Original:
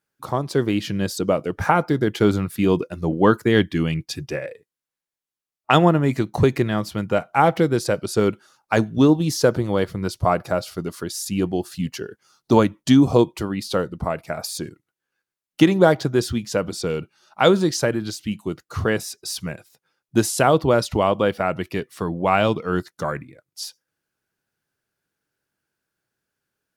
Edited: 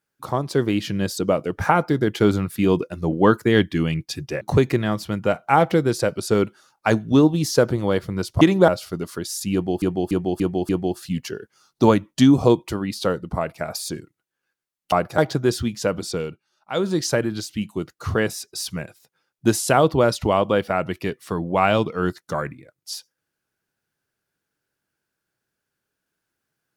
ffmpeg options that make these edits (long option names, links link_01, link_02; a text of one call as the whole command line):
ffmpeg -i in.wav -filter_complex "[0:a]asplit=12[link_01][link_02][link_03][link_04][link_05][link_06][link_07][link_08][link_09][link_10][link_11][link_12];[link_01]atrim=end=4.412[link_13];[link_02]atrim=start=6.268:end=10.272[link_14];[link_03]atrim=start=15.608:end=15.882[link_15];[link_04]atrim=start=10.528:end=11.672[link_16];[link_05]atrim=start=11.378:end=11.672[link_17];[link_06]atrim=start=11.378:end=11.672[link_18];[link_07]atrim=start=11.378:end=11.672[link_19];[link_08]atrim=start=11.378:end=15.612[link_20];[link_09]atrim=start=10.268:end=10.532[link_21];[link_10]atrim=start=15.878:end=17.13,asetpts=PTS-STARTPTS,afade=type=out:start_time=0.922:duration=0.33:silence=0.251189[link_22];[link_11]atrim=start=17.13:end=17.42,asetpts=PTS-STARTPTS,volume=-12dB[link_23];[link_12]atrim=start=17.42,asetpts=PTS-STARTPTS,afade=type=in:duration=0.33:silence=0.251189[link_24];[link_13][link_14]acrossfade=duration=0.004:curve1=hsin:curve2=hsin[link_25];[link_25][link_15]acrossfade=duration=0.004:curve1=hsin:curve2=hsin[link_26];[link_26][link_16]acrossfade=duration=0.004:curve1=hsin:curve2=hsin[link_27];[link_27][link_17]acrossfade=duration=0.004:curve1=hsin:curve2=hsin[link_28];[link_28][link_18]acrossfade=duration=0.004:curve1=hsin:curve2=hsin[link_29];[link_29][link_19]acrossfade=duration=0.004:curve1=hsin:curve2=hsin[link_30];[link_30][link_20]acrossfade=duration=0.004:curve1=hsin:curve2=hsin[link_31];[link_31][link_21]acrossfade=duration=0.004:curve1=hsin:curve2=hsin[link_32];[link_22][link_23][link_24]concat=n=3:v=0:a=1[link_33];[link_32][link_33]acrossfade=duration=0.004:curve1=hsin:curve2=hsin" out.wav